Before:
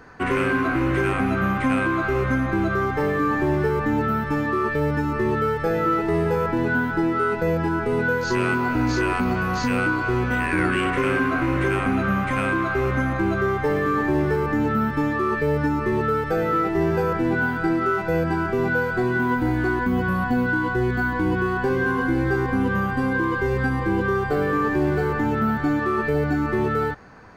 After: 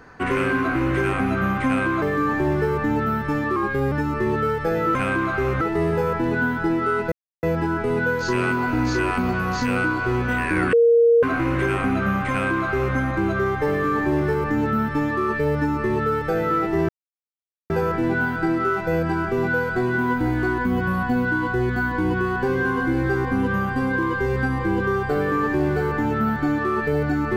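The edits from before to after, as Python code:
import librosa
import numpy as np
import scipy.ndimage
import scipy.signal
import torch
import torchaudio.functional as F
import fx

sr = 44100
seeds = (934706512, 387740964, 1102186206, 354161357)

y = fx.edit(x, sr, fx.cut(start_s=2.02, length_s=1.02),
    fx.speed_span(start_s=4.58, length_s=0.33, speed=0.92),
    fx.insert_silence(at_s=7.45, length_s=0.31),
    fx.bleep(start_s=10.75, length_s=0.5, hz=467.0, db=-11.5),
    fx.duplicate(start_s=12.32, length_s=0.66, to_s=5.94),
    fx.insert_silence(at_s=16.91, length_s=0.81), tone=tone)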